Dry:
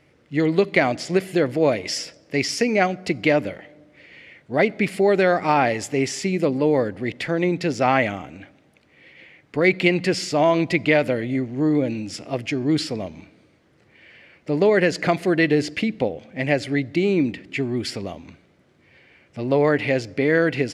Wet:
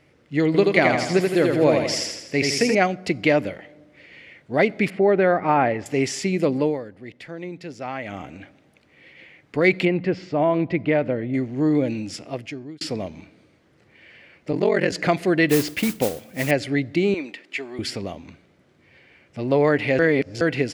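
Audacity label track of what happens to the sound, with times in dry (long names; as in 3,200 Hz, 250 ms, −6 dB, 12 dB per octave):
0.460000	2.750000	repeating echo 82 ms, feedback 52%, level −3.5 dB
4.900000	5.860000	low-pass filter 1,900 Hz
6.610000	8.220000	duck −12.5 dB, fades 0.18 s
9.850000	11.340000	head-to-tape spacing loss at 10 kHz 36 dB
12.060000	12.810000	fade out
14.510000	14.920000	ring modulation 22 Hz
15.490000	16.510000	noise that follows the level under the signal 11 dB
17.140000	17.790000	high-pass filter 580 Hz
19.990000	20.410000	reverse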